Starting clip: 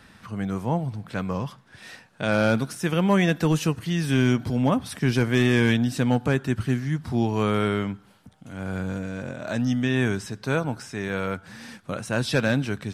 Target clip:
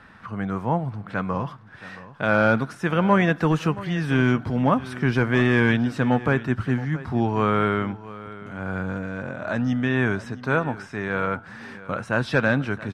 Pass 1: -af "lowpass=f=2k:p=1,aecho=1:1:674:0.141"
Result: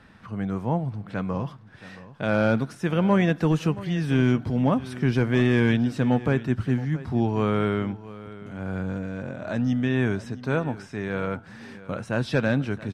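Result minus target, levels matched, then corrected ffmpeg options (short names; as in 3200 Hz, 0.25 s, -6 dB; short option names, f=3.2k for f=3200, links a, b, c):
1000 Hz band -4.5 dB
-af "lowpass=f=2k:p=1,equalizer=f=1.3k:t=o:w=1.6:g=8,aecho=1:1:674:0.141"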